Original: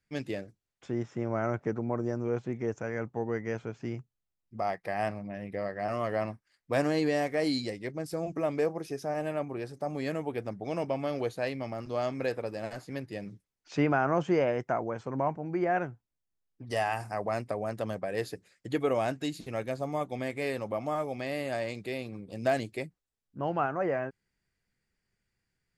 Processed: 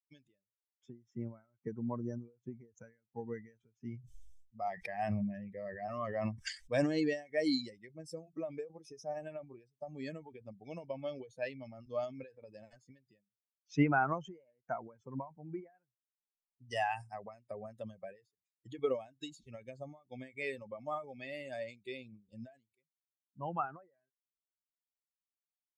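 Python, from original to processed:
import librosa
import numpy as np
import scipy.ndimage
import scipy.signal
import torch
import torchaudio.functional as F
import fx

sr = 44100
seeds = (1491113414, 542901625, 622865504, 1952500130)

y = fx.sustainer(x, sr, db_per_s=21.0, at=(3.98, 6.86))
y = fx.bin_expand(y, sr, power=2.0)
y = scipy.signal.sosfilt(scipy.signal.butter(4, 8200.0, 'lowpass', fs=sr, output='sos'), y)
y = fx.end_taper(y, sr, db_per_s=180.0)
y = y * 10.0 ** (1.5 / 20.0)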